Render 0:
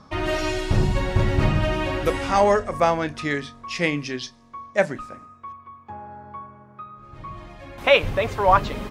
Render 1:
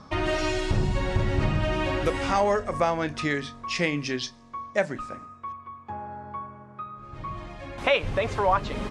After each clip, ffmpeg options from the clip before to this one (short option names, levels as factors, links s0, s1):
-af "lowpass=f=9700:w=0.5412,lowpass=f=9700:w=1.3066,acompressor=threshold=0.0501:ratio=2,volume=1.19"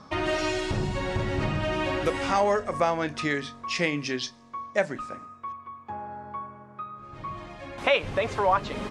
-af "lowshelf=f=86:g=-10.5"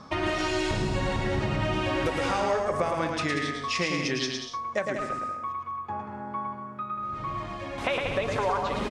-filter_complex "[0:a]acompressor=threshold=0.0447:ratio=6,asplit=2[s0][s1];[s1]aecho=0:1:110|187|240.9|278.6|305:0.631|0.398|0.251|0.158|0.1[s2];[s0][s2]amix=inputs=2:normalize=0,volume=1.26"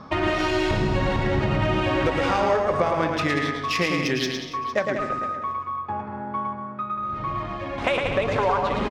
-af "adynamicsmooth=sensitivity=2.5:basefreq=4000,aecho=1:1:457:0.15,volume=1.78"